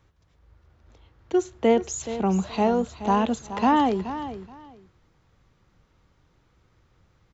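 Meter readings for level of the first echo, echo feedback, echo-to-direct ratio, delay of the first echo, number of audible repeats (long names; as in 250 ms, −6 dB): −12.5 dB, 19%, −12.5 dB, 425 ms, 2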